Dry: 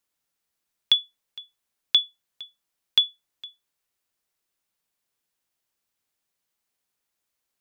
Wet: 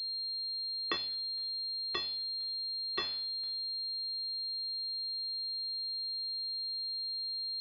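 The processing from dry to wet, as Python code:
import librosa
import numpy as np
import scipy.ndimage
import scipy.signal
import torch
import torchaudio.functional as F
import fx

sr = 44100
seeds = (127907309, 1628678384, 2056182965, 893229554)

y = fx.spec_trails(x, sr, decay_s=0.62)
y = fx.env_flanger(y, sr, rest_ms=2.5, full_db=-19.5, at=(0.97, 2.99))
y = fx.pwm(y, sr, carrier_hz=4200.0)
y = y * librosa.db_to_amplitude(-5.5)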